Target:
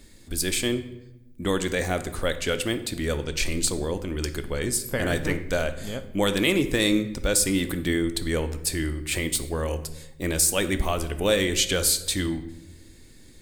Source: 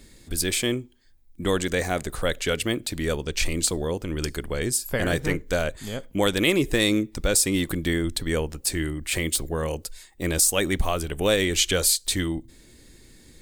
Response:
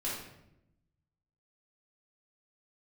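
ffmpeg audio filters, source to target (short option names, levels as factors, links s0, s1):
-filter_complex "[0:a]asplit=2[s0][s1];[1:a]atrim=start_sample=2205,asetrate=39690,aresample=44100[s2];[s1][s2]afir=irnorm=-1:irlink=0,volume=0.237[s3];[s0][s3]amix=inputs=2:normalize=0,volume=0.75"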